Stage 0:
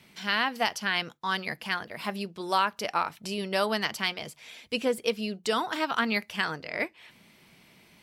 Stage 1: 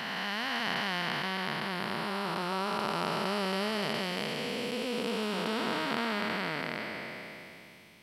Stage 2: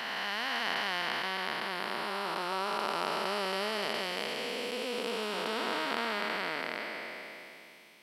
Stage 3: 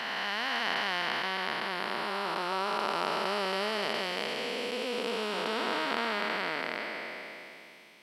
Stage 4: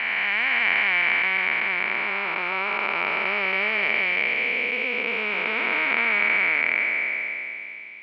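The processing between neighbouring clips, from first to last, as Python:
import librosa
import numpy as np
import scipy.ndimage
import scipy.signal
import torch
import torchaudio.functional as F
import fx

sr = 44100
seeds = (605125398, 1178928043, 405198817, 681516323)

y1 = fx.spec_blur(x, sr, span_ms=1090.0)
y1 = F.gain(torch.from_numpy(y1), 4.5).numpy()
y2 = scipy.signal.sosfilt(scipy.signal.butter(2, 330.0, 'highpass', fs=sr, output='sos'), y1)
y3 = fx.high_shelf(y2, sr, hz=10000.0, db=-8.5)
y3 = F.gain(torch.from_numpy(y3), 2.0).numpy()
y4 = fx.lowpass_res(y3, sr, hz=2300.0, q=15.0)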